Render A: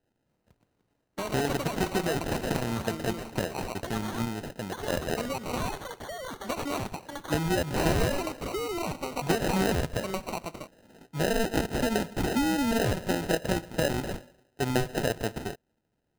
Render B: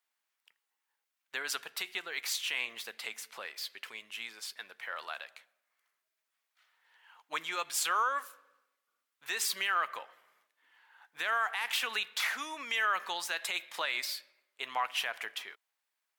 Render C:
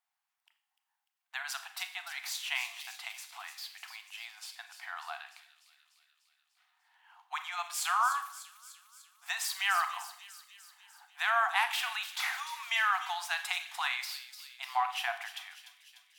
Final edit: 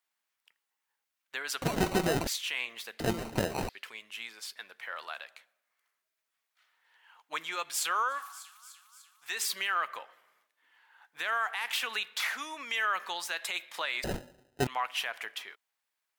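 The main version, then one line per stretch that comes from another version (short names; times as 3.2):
B
1.62–2.27 from A
3–3.69 from A
8.19–9.29 from C, crossfade 0.24 s
14.04–14.67 from A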